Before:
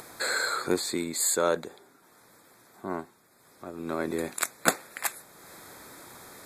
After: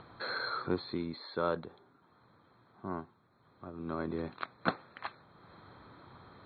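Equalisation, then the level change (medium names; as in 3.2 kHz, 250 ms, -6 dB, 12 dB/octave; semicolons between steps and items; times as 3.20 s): rippled Chebyshev low-pass 4.3 kHz, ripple 9 dB; peaking EQ 96 Hz +11.5 dB 2.3 oct; bass shelf 410 Hz +6 dB; -4.5 dB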